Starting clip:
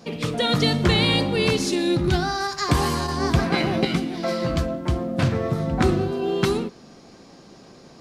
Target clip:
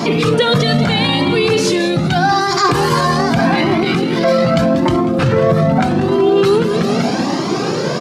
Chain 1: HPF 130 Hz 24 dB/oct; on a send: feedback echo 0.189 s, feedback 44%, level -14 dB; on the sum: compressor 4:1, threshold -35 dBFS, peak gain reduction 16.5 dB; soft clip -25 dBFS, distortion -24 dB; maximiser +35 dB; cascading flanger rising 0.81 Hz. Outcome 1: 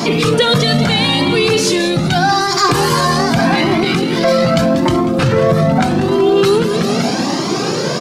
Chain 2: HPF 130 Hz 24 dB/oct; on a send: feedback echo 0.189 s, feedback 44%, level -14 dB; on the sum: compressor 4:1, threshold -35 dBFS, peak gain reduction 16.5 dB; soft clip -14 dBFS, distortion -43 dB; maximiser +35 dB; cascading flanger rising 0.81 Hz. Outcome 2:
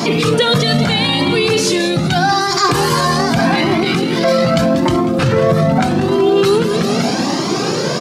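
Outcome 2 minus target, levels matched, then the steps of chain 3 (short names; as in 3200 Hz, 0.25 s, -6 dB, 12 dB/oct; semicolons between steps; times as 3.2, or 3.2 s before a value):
8000 Hz band +4.5 dB
HPF 130 Hz 24 dB/oct; high shelf 4000 Hz -7.5 dB; on a send: feedback echo 0.189 s, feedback 44%, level -14 dB; on the sum: compressor 4:1, threshold -35 dBFS, peak gain reduction 16.5 dB; soft clip -14 dBFS, distortion -44 dB; maximiser +35 dB; cascading flanger rising 0.81 Hz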